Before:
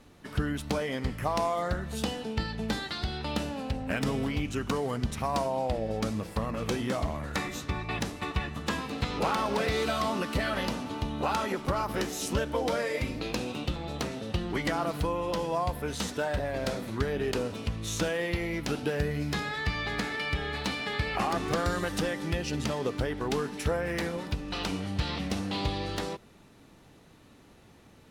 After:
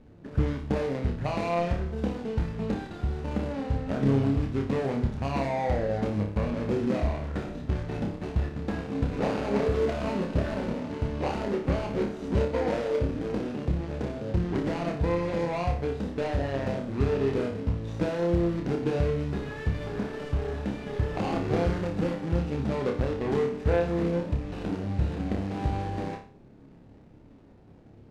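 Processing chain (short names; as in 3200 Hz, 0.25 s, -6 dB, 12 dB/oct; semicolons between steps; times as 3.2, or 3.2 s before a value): median filter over 41 samples; air absorption 63 m; flutter echo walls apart 5 m, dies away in 0.4 s; gain +3.5 dB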